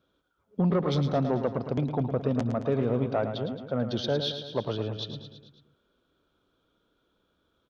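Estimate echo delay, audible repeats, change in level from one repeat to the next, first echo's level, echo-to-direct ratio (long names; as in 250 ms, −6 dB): 110 ms, 5, −4.5 dB, −9.0 dB, −7.0 dB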